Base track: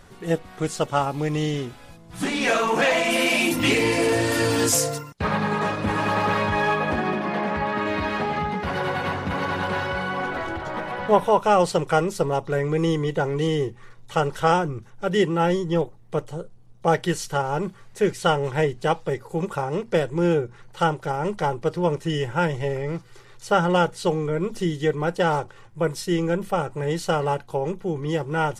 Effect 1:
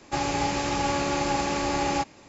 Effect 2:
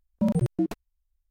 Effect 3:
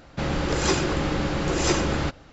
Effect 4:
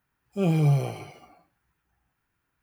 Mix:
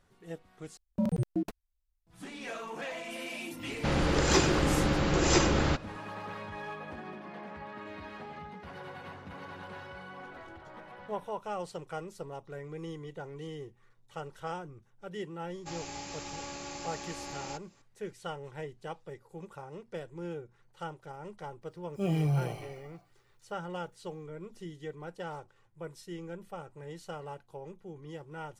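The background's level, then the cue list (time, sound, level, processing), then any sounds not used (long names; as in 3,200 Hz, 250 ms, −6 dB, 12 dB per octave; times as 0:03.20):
base track −19 dB
0:00.77: overwrite with 2 −5.5 dB
0:03.66: mix in 3 −2 dB
0:15.54: mix in 1 −17 dB + high-shelf EQ 4,300 Hz +11.5 dB
0:21.62: mix in 4 −5.5 dB + brickwall limiter −16.5 dBFS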